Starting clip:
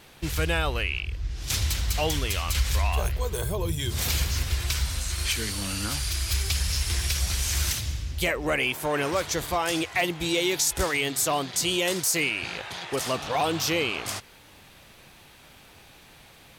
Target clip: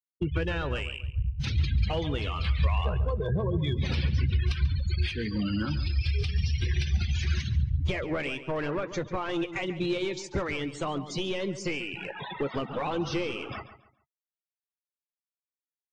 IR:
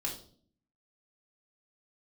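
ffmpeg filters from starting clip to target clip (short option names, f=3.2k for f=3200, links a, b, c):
-filter_complex "[0:a]highpass=160,lowpass=4.3k,afftfilt=real='re*gte(hypot(re,im),0.0355)':imag='im*gte(hypot(re,im),0.0355)':win_size=1024:overlap=0.75,equalizer=f=710:t=o:w=0.37:g=-6.5,acompressor=threshold=-41dB:ratio=3,asoftclip=type=hard:threshold=-33.5dB,aemphasis=mode=reproduction:type=bsi,asplit=2[a][b];[b]adelay=15,volume=-13.5dB[c];[a][c]amix=inputs=2:normalize=0,asplit=2[d][e];[e]adelay=146,lowpass=f=3.4k:p=1,volume=-12dB,asplit=2[f][g];[g]adelay=146,lowpass=f=3.4k:p=1,volume=0.3,asplit=2[h][i];[i]adelay=146,lowpass=f=3.4k:p=1,volume=0.3[j];[d][f][h][j]amix=inputs=4:normalize=0,asetrate=45938,aresample=44100,volume=8dB" -ar 22050 -c:a aac -b:a 48k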